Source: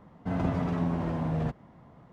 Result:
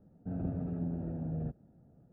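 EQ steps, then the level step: boxcar filter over 42 samples; distance through air 98 m; -6.0 dB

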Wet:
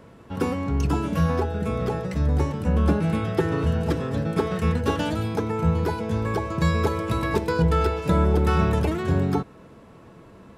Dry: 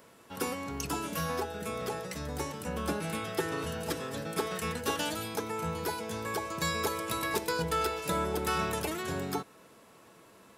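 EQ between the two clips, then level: RIAA curve playback; +5.5 dB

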